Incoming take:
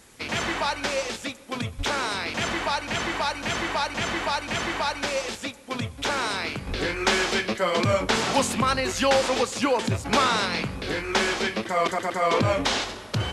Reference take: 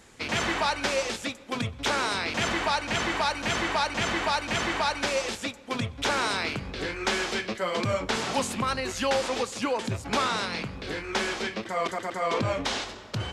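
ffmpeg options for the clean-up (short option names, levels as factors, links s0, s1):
-filter_complex "[0:a]asplit=3[s0][s1][s2];[s0]afade=t=out:st=1.77:d=0.02[s3];[s1]highpass=f=140:w=0.5412,highpass=f=140:w=1.3066,afade=t=in:st=1.77:d=0.02,afade=t=out:st=1.89:d=0.02[s4];[s2]afade=t=in:st=1.89:d=0.02[s5];[s3][s4][s5]amix=inputs=3:normalize=0,asplit=3[s6][s7][s8];[s6]afade=t=out:st=6.69:d=0.02[s9];[s7]highpass=f=140:w=0.5412,highpass=f=140:w=1.3066,afade=t=in:st=6.69:d=0.02,afade=t=out:st=6.81:d=0.02[s10];[s8]afade=t=in:st=6.81:d=0.02[s11];[s9][s10][s11]amix=inputs=3:normalize=0,agate=range=0.0891:threshold=0.0398,asetnsamples=n=441:p=0,asendcmd='6.67 volume volume -5dB',volume=1"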